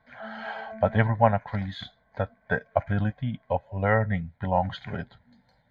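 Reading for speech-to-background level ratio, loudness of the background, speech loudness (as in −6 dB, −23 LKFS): 16.0 dB, −43.5 LKFS, −27.5 LKFS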